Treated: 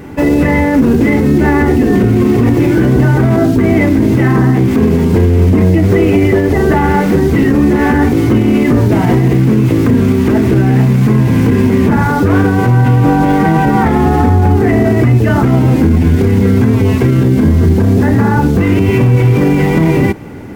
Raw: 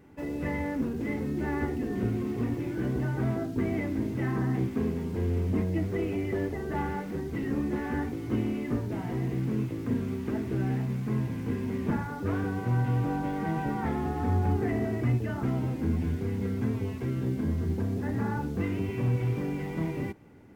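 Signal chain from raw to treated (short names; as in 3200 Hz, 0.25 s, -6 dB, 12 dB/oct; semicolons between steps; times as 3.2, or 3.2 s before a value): maximiser +26.5 dB; gain -1 dB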